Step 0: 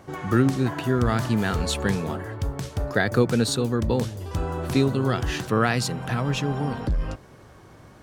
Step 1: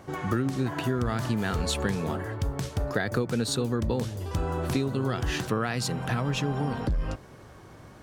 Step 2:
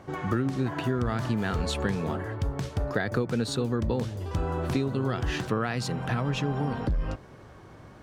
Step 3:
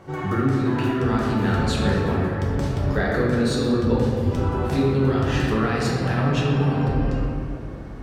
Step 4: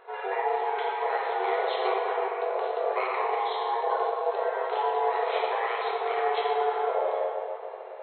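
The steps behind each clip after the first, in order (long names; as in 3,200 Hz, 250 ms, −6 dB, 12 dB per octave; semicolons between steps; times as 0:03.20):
downward compressor, threshold −23 dBFS, peak gain reduction 9.5 dB
high-shelf EQ 6,300 Hz −10 dB
convolution reverb RT60 2.4 s, pre-delay 5 ms, DRR −5 dB
ring modulation 580 Hz; brick-wall band-pass 370–4,200 Hz; level −2.5 dB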